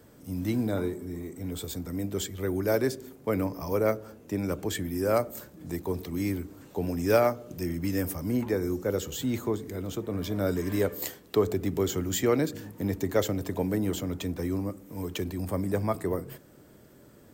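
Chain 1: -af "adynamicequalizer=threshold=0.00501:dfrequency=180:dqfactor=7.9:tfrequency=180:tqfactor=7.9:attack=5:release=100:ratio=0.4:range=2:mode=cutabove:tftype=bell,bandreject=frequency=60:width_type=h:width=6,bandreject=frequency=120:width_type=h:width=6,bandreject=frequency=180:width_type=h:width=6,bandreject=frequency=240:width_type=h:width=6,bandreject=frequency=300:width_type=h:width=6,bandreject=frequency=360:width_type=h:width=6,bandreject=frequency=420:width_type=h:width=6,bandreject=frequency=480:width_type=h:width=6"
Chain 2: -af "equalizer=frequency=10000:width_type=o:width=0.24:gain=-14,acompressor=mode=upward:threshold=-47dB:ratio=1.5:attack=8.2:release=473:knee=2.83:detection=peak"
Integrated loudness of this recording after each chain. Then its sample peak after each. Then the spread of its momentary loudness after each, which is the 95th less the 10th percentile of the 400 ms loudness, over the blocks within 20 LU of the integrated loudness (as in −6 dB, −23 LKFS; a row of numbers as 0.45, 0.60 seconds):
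−30.5, −30.0 LKFS; −10.0, −10.5 dBFS; 10, 10 LU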